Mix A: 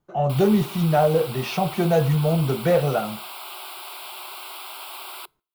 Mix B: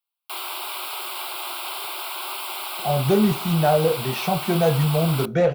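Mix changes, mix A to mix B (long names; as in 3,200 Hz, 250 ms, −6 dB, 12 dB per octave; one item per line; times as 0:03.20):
speech: entry +2.70 s
background +6.0 dB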